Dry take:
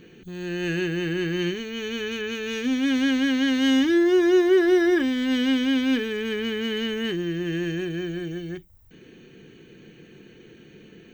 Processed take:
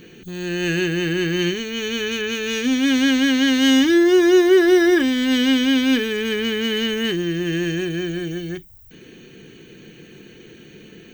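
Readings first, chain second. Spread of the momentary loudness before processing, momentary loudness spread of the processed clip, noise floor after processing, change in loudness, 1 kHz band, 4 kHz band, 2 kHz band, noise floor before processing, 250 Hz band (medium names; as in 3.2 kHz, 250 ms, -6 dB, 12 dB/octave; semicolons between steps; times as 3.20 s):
12 LU, 12 LU, -45 dBFS, +5.0 dB, +5.0 dB, +7.5 dB, +6.0 dB, -51 dBFS, +4.5 dB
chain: treble shelf 4.1 kHz +8.5 dB; trim +4.5 dB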